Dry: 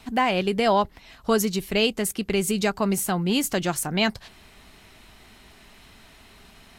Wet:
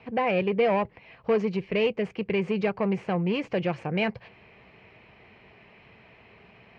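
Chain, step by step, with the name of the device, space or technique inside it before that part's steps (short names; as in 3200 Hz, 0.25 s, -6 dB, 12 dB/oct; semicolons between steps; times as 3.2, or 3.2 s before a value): guitar amplifier (tube stage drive 21 dB, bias 0.4; tone controls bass +2 dB, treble -14 dB; speaker cabinet 110–4400 Hz, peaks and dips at 120 Hz +5 dB, 260 Hz -7 dB, 490 Hz +9 dB, 1400 Hz -6 dB, 2400 Hz +7 dB, 3700 Hz -10 dB)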